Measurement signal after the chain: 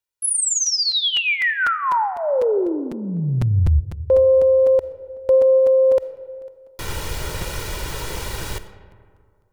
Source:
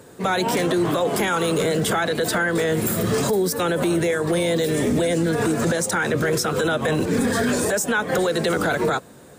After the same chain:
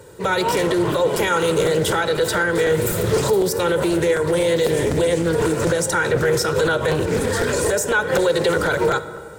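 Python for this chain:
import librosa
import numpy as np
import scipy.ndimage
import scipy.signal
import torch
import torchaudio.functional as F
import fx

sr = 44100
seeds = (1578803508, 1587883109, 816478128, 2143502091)

y = fx.peak_eq(x, sr, hz=70.0, db=5.0, octaves=1.3)
y = y + 0.65 * np.pad(y, (int(2.1 * sr / 1000.0), 0))[:len(y)]
y = fx.rev_freeverb(y, sr, rt60_s=2.0, hf_ratio=0.45, predelay_ms=5, drr_db=11.5)
y = fx.buffer_crackle(y, sr, first_s=0.66, period_s=0.25, block=256, kind='repeat')
y = fx.doppler_dist(y, sr, depth_ms=0.22)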